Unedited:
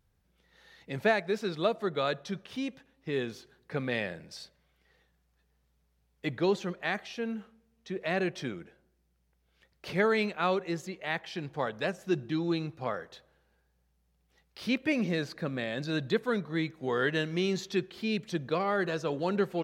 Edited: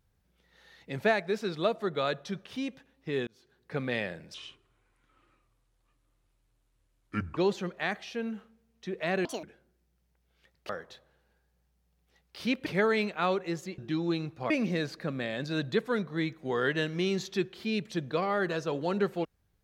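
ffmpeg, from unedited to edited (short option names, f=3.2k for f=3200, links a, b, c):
-filter_complex "[0:a]asplit=10[a][b][c][d][e][f][g][h][i][j];[a]atrim=end=3.27,asetpts=PTS-STARTPTS,afade=t=out:st=3.266:d=0.004:c=hsin[k];[b]atrim=start=3.27:end=4.344,asetpts=PTS-STARTPTS,afade=t=in:d=0.5[l];[c]atrim=start=4.34:end=6.4,asetpts=PTS-STARTPTS,asetrate=29988,aresample=44100,atrim=end_sample=133597,asetpts=PTS-STARTPTS[m];[d]atrim=start=6.396:end=8.284[n];[e]atrim=start=8.28:end=8.61,asetpts=PTS-STARTPTS,asetrate=79821,aresample=44100,atrim=end_sample=8040,asetpts=PTS-STARTPTS[o];[f]atrim=start=8.606:end=9.872[p];[g]atrim=start=12.908:end=14.882[q];[h]atrim=start=9.868:end=10.992[r];[i]atrim=start=12.188:end=12.912[s];[j]atrim=start=14.878[t];[k][l]concat=n=2:v=0:a=1[u];[u][m]acrossfade=d=0.004:c1=hsin:c2=hsin[v];[v][n]acrossfade=d=0.004:c1=hsin:c2=hsin[w];[w][o]acrossfade=d=0.004:c1=hsin:c2=hsin[x];[x][p]acrossfade=d=0.004:c1=hsin:c2=hsin[y];[y][q]acrossfade=d=0.004:c1=hsin:c2=hsin[z];[z][r]acrossfade=d=0.004:c1=hsin:c2=hsin[aa];[aa][s]acrossfade=d=0.004:c1=hsin:c2=hsin[ab];[ab][t]acrossfade=d=0.004:c1=hsin:c2=hsin"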